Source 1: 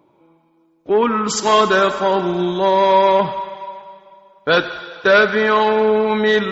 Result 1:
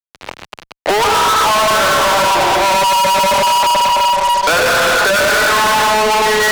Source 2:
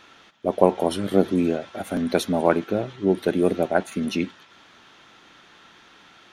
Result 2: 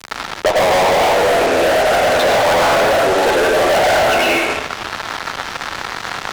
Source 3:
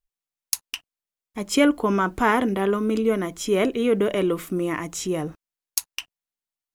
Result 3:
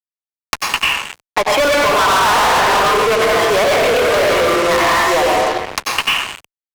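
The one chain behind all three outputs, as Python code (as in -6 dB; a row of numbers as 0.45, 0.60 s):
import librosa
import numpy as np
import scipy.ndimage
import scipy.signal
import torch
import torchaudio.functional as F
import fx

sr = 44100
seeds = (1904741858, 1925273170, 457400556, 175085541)

p1 = scipy.signal.sosfilt(scipy.signal.butter(2, 1900.0, 'lowpass', fs=sr, output='sos'), x)
p2 = p1 + 10.0 ** (-20.0 / 20.0) * np.pad(p1, (int(75 * sr / 1000.0), 0))[:len(p1)]
p3 = fx.wow_flutter(p2, sr, seeds[0], rate_hz=2.1, depth_cents=15.0)
p4 = fx.rev_plate(p3, sr, seeds[1], rt60_s=1.2, hf_ratio=0.85, predelay_ms=80, drr_db=-4.0)
p5 = fx.over_compress(p4, sr, threshold_db=-18.0, ratio=-0.5)
p6 = p4 + (p5 * librosa.db_to_amplitude(-2.0))
p7 = scipy.signal.sosfilt(scipy.signal.butter(4, 600.0, 'highpass', fs=sr, output='sos'), p6)
p8 = fx.fuzz(p7, sr, gain_db=31.0, gate_db=-41.0)
p9 = fx.band_squash(p8, sr, depth_pct=70)
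y = p9 * librosa.db_to_amplitude(1.5)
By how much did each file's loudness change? +4.0, +9.0, +9.5 LU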